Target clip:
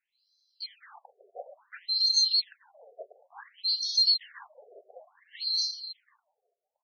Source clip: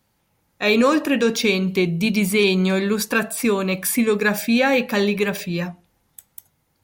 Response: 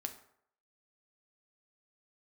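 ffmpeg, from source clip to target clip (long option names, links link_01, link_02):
-af "afftfilt=real='real(if(lt(b,736),b+184*(1-2*mod(floor(b/184),2)),b),0)':imag='imag(if(lt(b,736),b+184*(1-2*mod(floor(b/184),2)),b),0)':win_size=2048:overlap=0.75,aecho=1:1:366|732|1098|1464:0.316|0.104|0.0344|0.0114,afftfilt=real='re*between(b*sr/1024,510*pow(4600/510,0.5+0.5*sin(2*PI*0.57*pts/sr))/1.41,510*pow(4600/510,0.5+0.5*sin(2*PI*0.57*pts/sr))*1.41)':imag='im*between(b*sr/1024,510*pow(4600/510,0.5+0.5*sin(2*PI*0.57*pts/sr))/1.41,510*pow(4600/510,0.5+0.5*sin(2*PI*0.57*pts/sr))*1.41)':win_size=1024:overlap=0.75,volume=-5dB"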